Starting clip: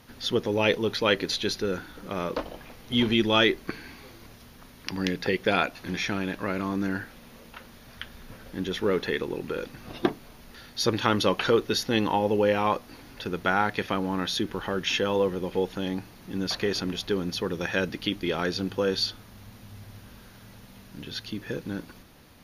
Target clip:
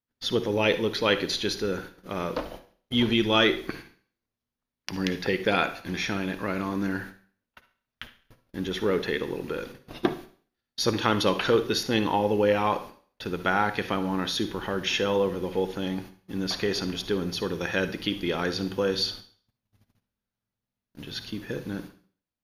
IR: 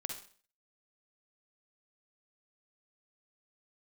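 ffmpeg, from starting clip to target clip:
-filter_complex "[0:a]agate=range=0.01:threshold=0.01:ratio=16:detection=peak,asplit=2[s0][s1];[1:a]atrim=start_sample=2205,asetrate=42336,aresample=44100[s2];[s1][s2]afir=irnorm=-1:irlink=0,volume=0.794[s3];[s0][s3]amix=inputs=2:normalize=0,volume=0.596"

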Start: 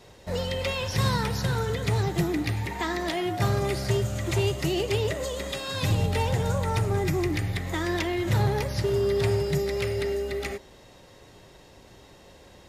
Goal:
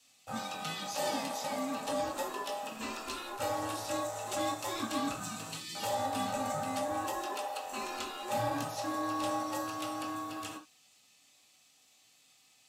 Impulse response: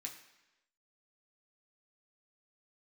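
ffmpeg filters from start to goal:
-filter_complex "[0:a]aeval=exprs='val(0)*sin(2*PI*710*n/s)':c=same,afwtdn=0.0316,aexciter=amount=6.7:drive=3.6:freq=2200[s0];[1:a]atrim=start_sample=2205,atrim=end_sample=3969[s1];[s0][s1]afir=irnorm=-1:irlink=0"

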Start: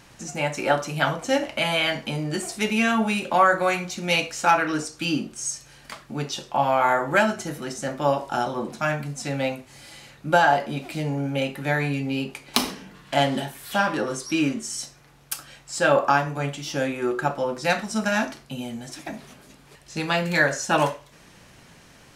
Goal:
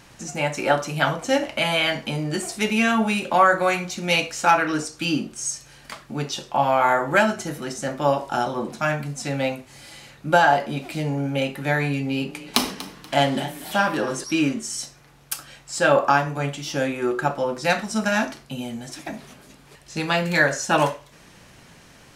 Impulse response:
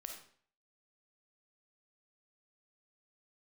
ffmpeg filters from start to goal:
-filter_complex "[0:a]asettb=1/sr,asplit=3[s0][s1][s2];[s0]atrim=end=11.974[s3];[s1]atrim=start=11.97:end=14.24,asetpts=PTS-STARTPTS,afade=t=in:d=0.004:c=qsin,afade=t=out:st=2.266:d=0.004:c=qsin,asplit=4[s4][s5][s6][s7];[s5]adelay=240,afreqshift=31,volume=0.168[s8];[s6]adelay=480,afreqshift=62,volume=0.0519[s9];[s7]adelay=720,afreqshift=93,volume=0.0162[s10];[s4][s8][s9][s10]amix=inputs=4:normalize=0,atrim=end_sample=100107[s11];[s2]atrim=start=14.236[s12];[s3][s11]acrossfade=d=0.004:c1=hsin:c2=qsin[s13];[s13][s12]acrossfade=d=0.004:c1=qsin:c2=hsin,volume=1.19"

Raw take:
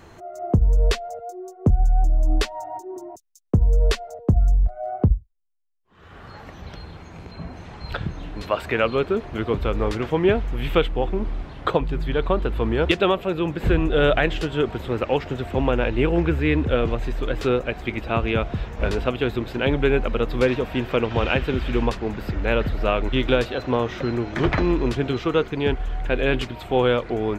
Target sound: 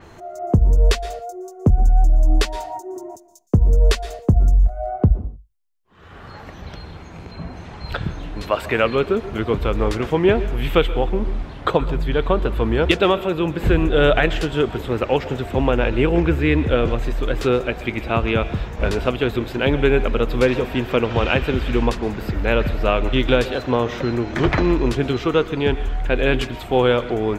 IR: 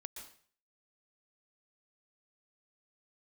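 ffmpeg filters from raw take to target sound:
-filter_complex "[0:a]asplit=2[s0][s1];[1:a]atrim=start_sample=2205,afade=t=out:st=0.37:d=0.01,atrim=end_sample=16758[s2];[s1][s2]afir=irnorm=-1:irlink=0,volume=0.708[s3];[s0][s3]amix=inputs=2:normalize=0,adynamicequalizer=threshold=0.00708:dfrequency=6000:dqfactor=0.7:tfrequency=6000:tqfactor=0.7:attack=5:release=100:ratio=0.375:range=2:mode=boostabove:tftype=highshelf"

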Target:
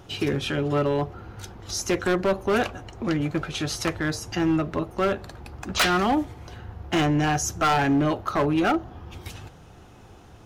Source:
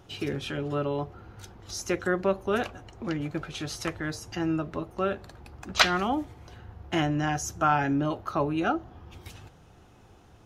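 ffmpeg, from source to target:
-af "volume=15,asoftclip=hard,volume=0.0668,volume=2.11"

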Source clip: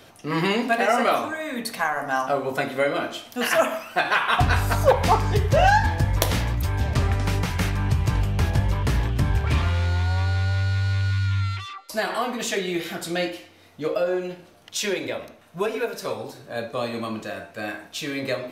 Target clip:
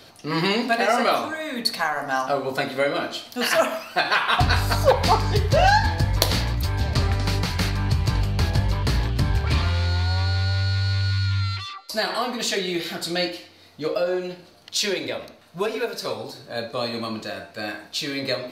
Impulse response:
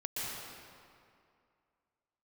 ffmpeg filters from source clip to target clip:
-af "equalizer=f=4400:t=o:w=0.39:g=11.5"

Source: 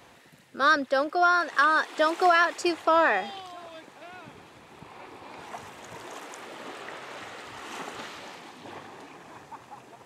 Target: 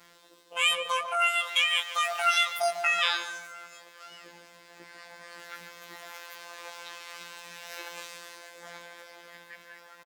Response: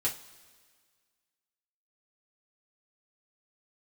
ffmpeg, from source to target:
-filter_complex "[0:a]afftfilt=real='hypot(re,im)*cos(PI*b)':imag='0':win_size=2048:overlap=0.75,asetrate=88200,aresample=44100,atempo=0.5,asplit=2[s0][s1];[s1]adelay=147,lowpass=f=1900:p=1,volume=0.398,asplit=2[s2][s3];[s3]adelay=147,lowpass=f=1900:p=1,volume=0.39,asplit=2[s4][s5];[s5]adelay=147,lowpass=f=1900:p=1,volume=0.39,asplit=2[s6][s7];[s7]adelay=147,lowpass=f=1900:p=1,volume=0.39[s8];[s0][s2][s4][s6][s8]amix=inputs=5:normalize=0"

